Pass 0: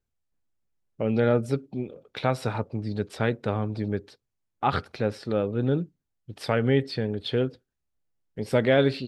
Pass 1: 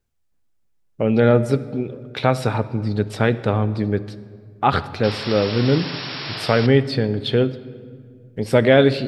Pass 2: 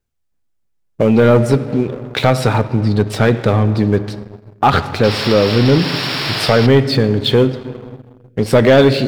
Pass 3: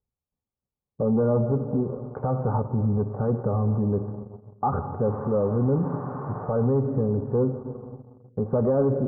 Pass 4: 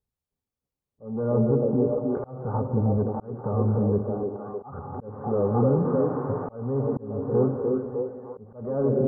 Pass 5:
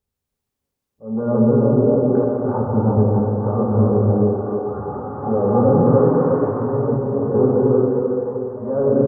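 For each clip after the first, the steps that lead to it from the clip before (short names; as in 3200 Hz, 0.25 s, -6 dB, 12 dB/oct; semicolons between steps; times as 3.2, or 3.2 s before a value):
painted sound noise, 5.03–6.67, 290–5600 Hz -38 dBFS; on a send at -15 dB: reverb RT60 2.0 s, pre-delay 26 ms; on the sum: gain +7 dB
sample leveller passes 2; in parallel at -1.5 dB: compressor, threshold -17 dBFS, peak gain reduction 11 dB; on the sum: gain -2.5 dB
limiter -8 dBFS, peak gain reduction 6.5 dB; steep low-pass 1200 Hz 48 dB/oct; notch comb 330 Hz; gain -6.5 dB
on a send: delay with a stepping band-pass 0.305 s, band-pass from 350 Hz, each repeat 0.7 oct, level -0.5 dB; on the sum: auto swell 0.428 s
low shelf 140 Hz -3.5 dB; echo 0.712 s -16.5 dB; non-linear reverb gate 0.46 s flat, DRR -2.5 dB; gain +4.5 dB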